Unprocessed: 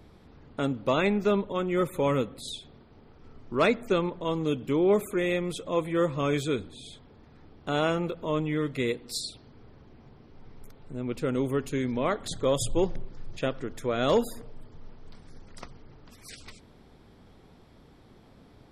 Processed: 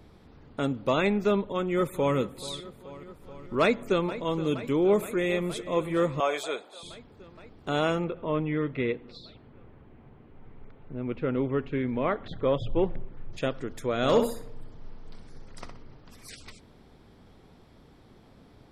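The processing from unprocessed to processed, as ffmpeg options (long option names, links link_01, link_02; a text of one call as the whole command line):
ffmpeg -i in.wav -filter_complex "[0:a]asplit=2[link_01][link_02];[link_02]afade=type=in:start_time=1.35:duration=0.01,afade=type=out:start_time=2.17:duration=0.01,aecho=0:1:430|860|1290|1720|2150|2580|3010|3440|3870|4300:0.141254|0.10594|0.0794552|0.0595914|0.0446936|0.0335202|0.0251401|0.0188551|0.0141413|0.010606[link_03];[link_01][link_03]amix=inputs=2:normalize=0,asplit=2[link_04][link_05];[link_05]afade=type=in:start_time=3.61:duration=0.01,afade=type=out:start_time=4.12:duration=0.01,aecho=0:1:470|940|1410|1880|2350|2820|3290|3760|4230|4700|5170|5640:0.188365|0.150692|0.120554|0.0964428|0.0771543|0.0617234|0.0493787|0.039503|0.0316024|0.0252819|0.0202255|0.0161804[link_06];[link_04][link_06]amix=inputs=2:normalize=0,asplit=2[link_07][link_08];[link_08]afade=type=in:start_time=4.86:duration=0.01,afade=type=out:start_time=5.58:duration=0.01,aecho=0:1:420|840|1260:0.149624|0.0523682|0.0183289[link_09];[link_07][link_09]amix=inputs=2:normalize=0,asettb=1/sr,asplit=3[link_10][link_11][link_12];[link_10]atrim=end=6.204[link_13];[link_11]atrim=start=6.2:end=6.83,asetpts=PTS-STARTPTS,afade=type=in:duration=0.004:curve=qsin,afade=type=out:start_time=0.626:duration=0.004:curve=qsin,highpass=frequency=690:width_type=q:width=3.3[link_14];[link_12]atrim=start=6.826[link_15];[link_13][link_14]acrossfade=duration=0.004:curve1=hsin:curve2=qsin[link_16];[link_16][link_15]acrossfade=duration=0.004:curve1=qsin:curve2=hsin,asettb=1/sr,asplit=3[link_17][link_18][link_19];[link_17]atrim=end=8.044[link_20];[link_18]atrim=start=8.04:end=13.33,asetpts=PTS-STARTPTS,afade=type=in:duration=0.004:curve=qsin,afade=type=out:start_time=5.286:duration=0.004:curve=qsin,lowpass=frequency=2900:width=0.5412,lowpass=frequency=2900:width=1.3066[link_21];[link_19]atrim=start=13.326[link_22];[link_20][link_21]acrossfade=duration=0.004:curve1=hsin:curve2=qsin[link_23];[link_23][link_22]acrossfade=duration=0.004:curve1=qsin:curve2=hsin,asettb=1/sr,asplit=3[link_24][link_25][link_26];[link_24]atrim=end=13.964[link_27];[link_25]atrim=start=13.96:end=16.3,asetpts=PTS-STARTPTS,afade=type=in:duration=0.004:curve=qsin,afade=type=out:start_time=2.336:duration=0.004:curve=qsin,asplit=2[link_28][link_29];[link_29]adelay=63,lowpass=frequency=4900:poles=1,volume=-6dB,asplit=2[link_30][link_31];[link_31]adelay=63,lowpass=frequency=4900:poles=1,volume=0.33,asplit=2[link_32][link_33];[link_33]adelay=63,lowpass=frequency=4900:poles=1,volume=0.33,asplit=2[link_34][link_35];[link_35]adelay=63,lowpass=frequency=4900:poles=1,volume=0.33[link_36];[link_28][link_30][link_32][link_34][link_36]amix=inputs=5:normalize=0,atrim=end_sample=103194[link_37];[link_26]atrim=start=16.296[link_38];[link_27][link_37]acrossfade=duration=0.004:curve1=hsin:curve2=qsin[link_39];[link_39][link_38]acrossfade=duration=0.004:curve1=qsin:curve2=hsin" out.wav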